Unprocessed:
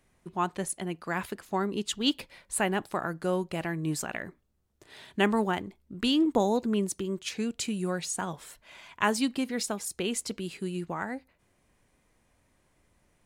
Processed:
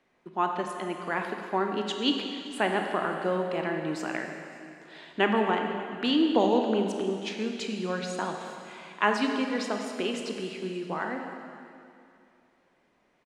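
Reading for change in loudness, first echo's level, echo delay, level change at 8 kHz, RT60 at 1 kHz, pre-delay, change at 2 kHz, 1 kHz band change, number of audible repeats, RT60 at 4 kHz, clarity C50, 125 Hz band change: +1.5 dB, -22.5 dB, 566 ms, -10.5 dB, 2.5 s, 21 ms, +3.0 dB, +3.5 dB, 1, 2.4 s, 4.0 dB, -3.5 dB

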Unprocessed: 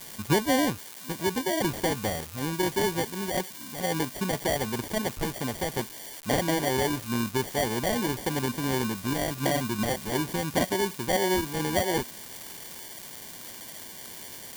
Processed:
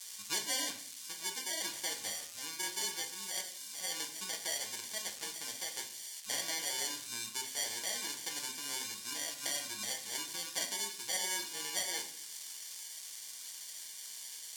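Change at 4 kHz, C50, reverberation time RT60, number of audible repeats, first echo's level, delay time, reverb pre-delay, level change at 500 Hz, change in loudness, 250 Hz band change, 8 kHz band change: -2.5 dB, 10.0 dB, 0.60 s, no echo, no echo, no echo, 6 ms, -21.5 dB, -9.0 dB, -25.5 dB, 0.0 dB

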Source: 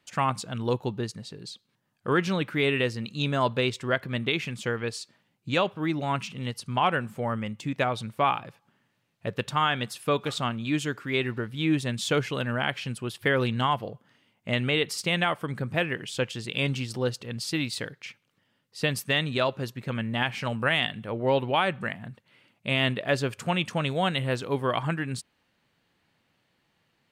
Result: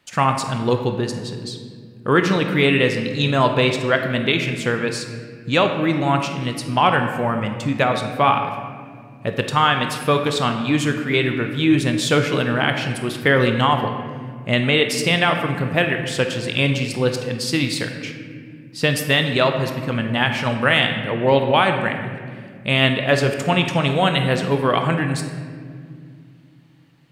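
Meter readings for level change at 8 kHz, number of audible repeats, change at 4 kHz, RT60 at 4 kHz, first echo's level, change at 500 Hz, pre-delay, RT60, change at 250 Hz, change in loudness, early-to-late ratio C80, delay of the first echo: +8.0 dB, no echo, +8.5 dB, 1.2 s, no echo, +9.0 dB, 20 ms, 2.2 s, +9.0 dB, +8.5 dB, 8.0 dB, no echo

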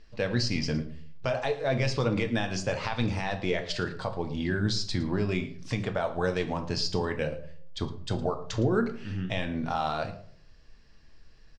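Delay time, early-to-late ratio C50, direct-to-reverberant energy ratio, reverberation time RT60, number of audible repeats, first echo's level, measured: 112 ms, 12.0 dB, 6.0 dB, 0.55 s, 1, -19.0 dB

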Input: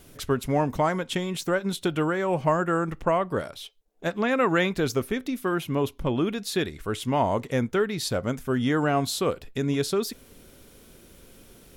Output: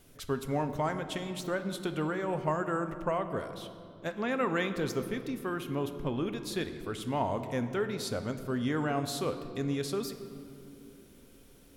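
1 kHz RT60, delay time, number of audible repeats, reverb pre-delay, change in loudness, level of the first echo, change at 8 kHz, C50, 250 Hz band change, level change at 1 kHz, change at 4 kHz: 2.2 s, no echo, no echo, 4 ms, -7.0 dB, no echo, -8.0 dB, 10.0 dB, -6.5 dB, -7.0 dB, -7.5 dB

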